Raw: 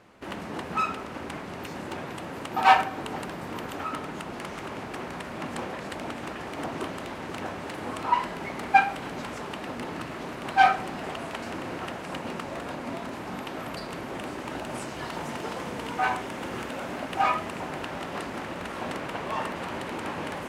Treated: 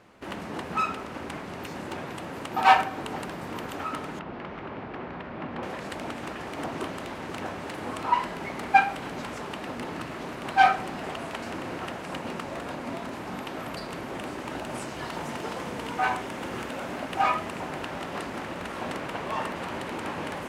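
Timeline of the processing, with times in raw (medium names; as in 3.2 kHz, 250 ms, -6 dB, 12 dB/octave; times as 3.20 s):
4.19–5.63 s: distance through air 330 m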